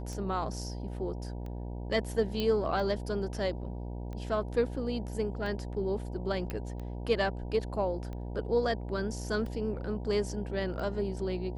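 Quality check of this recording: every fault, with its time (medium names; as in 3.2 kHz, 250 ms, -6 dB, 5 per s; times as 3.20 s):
buzz 60 Hz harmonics 16 -38 dBFS
tick 45 rpm
2.40 s: pop -19 dBFS
6.50 s: pop -22 dBFS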